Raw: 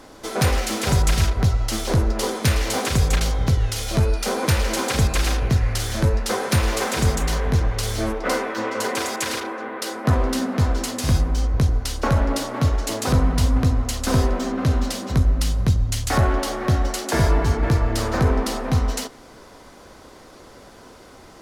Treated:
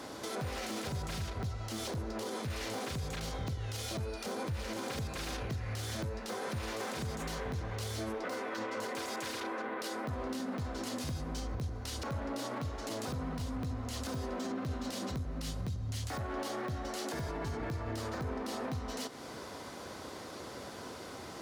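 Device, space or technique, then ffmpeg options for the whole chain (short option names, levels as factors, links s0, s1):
broadcast voice chain: -filter_complex "[0:a]asettb=1/sr,asplit=3[s0][s1][s2];[s0]atrim=end=4.254[s3];[s1]atrim=start=4.25:end=4.91,asetpts=PTS-STARTPTS,afade=t=in:d=0.004:c=qsin,afade=t=out:st=0.656:d=0.004:c=qsin,equalizer=f=82:t=o:w=2.2:g=7.5[s4];[s2]atrim=start=4.906[s5];[s3][s4]acrossfade=d=0.004:c1=hsin:c2=qsin[s6];[s6][s5]acrossfade=d=0.004:c1=qsin:c2=hsin,highpass=f=72:w=0.5412,highpass=f=72:w=1.3066,deesser=0.6,acompressor=threshold=0.0158:ratio=3,equalizer=f=4000:t=o:w=0.77:g=2,alimiter=level_in=1.88:limit=0.0631:level=0:latency=1:release=33,volume=0.531"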